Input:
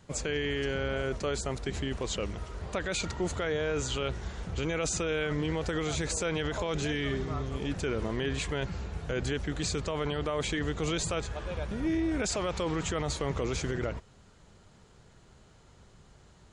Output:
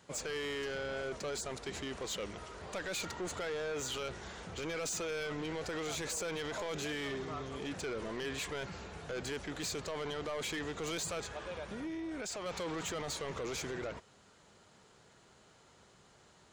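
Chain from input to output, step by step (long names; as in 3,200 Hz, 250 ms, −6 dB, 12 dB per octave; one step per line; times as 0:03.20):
high-pass filter 370 Hz 6 dB per octave
0:11.34–0:12.46: downward compressor, threshold −36 dBFS, peak gain reduction 7 dB
soft clipping −34 dBFS, distortion −10 dB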